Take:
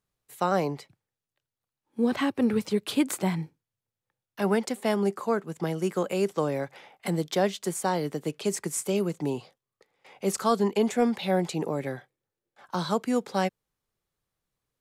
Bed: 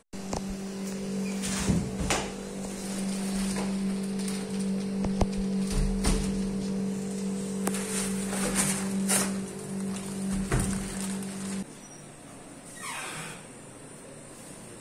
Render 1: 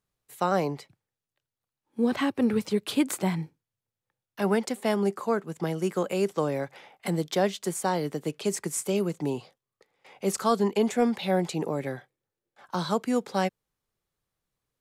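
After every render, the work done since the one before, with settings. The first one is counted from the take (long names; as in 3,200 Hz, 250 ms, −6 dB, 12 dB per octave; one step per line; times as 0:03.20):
no processing that can be heard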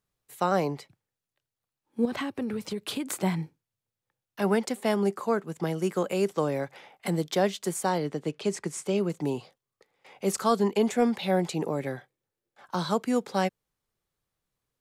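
0:02.05–0:03.16: downward compressor 12 to 1, threshold −27 dBFS
0:07.98–0:09.10: high-frequency loss of the air 59 metres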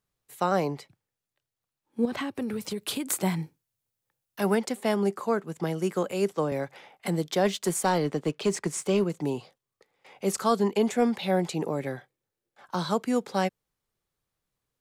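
0:02.35–0:04.55: high-shelf EQ 6,900 Hz +9 dB
0:06.11–0:06.52: multiband upward and downward expander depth 70%
0:07.45–0:09.04: leveller curve on the samples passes 1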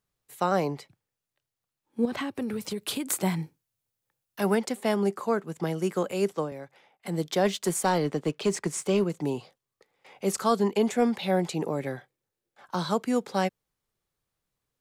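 0:06.35–0:07.21: duck −10 dB, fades 0.18 s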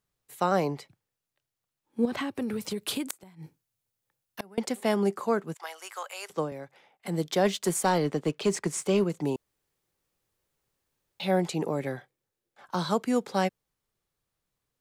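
0:03.09–0:04.58: gate with flip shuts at −20 dBFS, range −27 dB
0:05.54–0:06.30: high-pass filter 800 Hz 24 dB per octave
0:09.36–0:11.20: fill with room tone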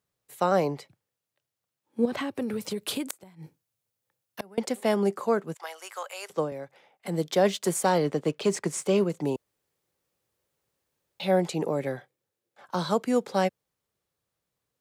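high-pass filter 64 Hz
parametric band 540 Hz +4 dB 0.6 octaves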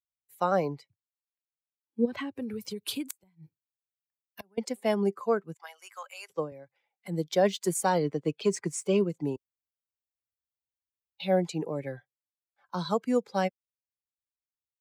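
spectral dynamics exaggerated over time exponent 1.5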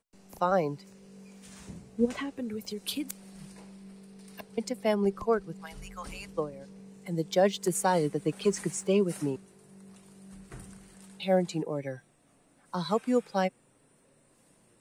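mix in bed −19 dB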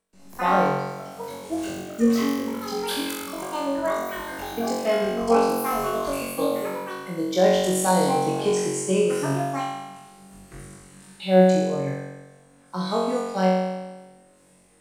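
delay with pitch and tempo change per echo 95 ms, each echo +6 semitones, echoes 3, each echo −6 dB
flutter between parallel walls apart 3.7 metres, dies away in 1.2 s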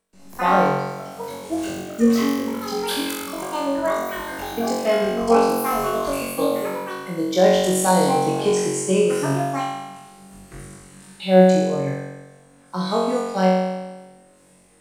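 level +3 dB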